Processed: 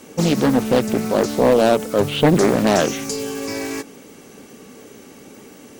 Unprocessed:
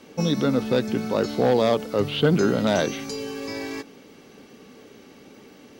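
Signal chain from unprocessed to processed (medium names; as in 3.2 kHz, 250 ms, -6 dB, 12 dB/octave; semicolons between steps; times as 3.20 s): resonant high shelf 6 kHz +9 dB, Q 1.5; loudspeaker Doppler distortion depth 0.62 ms; trim +5.5 dB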